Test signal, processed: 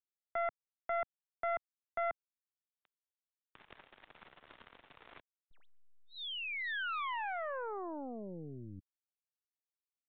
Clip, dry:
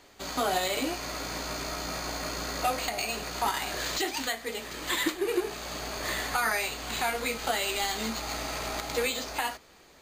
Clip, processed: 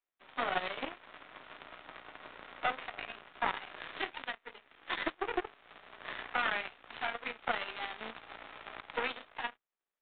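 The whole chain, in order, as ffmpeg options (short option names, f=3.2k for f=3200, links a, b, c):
-filter_complex "[0:a]aeval=exprs='0.178*(cos(1*acos(clip(val(0)/0.178,-1,1)))-cos(1*PI/2))+0.0891*(cos(4*acos(clip(val(0)/0.178,-1,1)))-cos(4*PI/2))+0.0282*(cos(6*acos(clip(val(0)/0.178,-1,1)))-cos(6*PI/2))+0.0251*(cos(7*acos(clip(val(0)/0.178,-1,1)))-cos(7*PI/2))':c=same,acrossover=split=140|1800[a][b][c];[b]crystalizer=i=9:c=0[d];[a][d][c]amix=inputs=3:normalize=0,lowshelf=f=180:g=-10.5,aresample=8000,aresample=44100,volume=-7.5dB"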